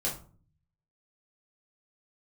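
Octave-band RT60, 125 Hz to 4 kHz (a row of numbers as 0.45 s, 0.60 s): 1.0 s, 0.70 s, 0.45 s, 0.40 s, 0.30 s, 0.25 s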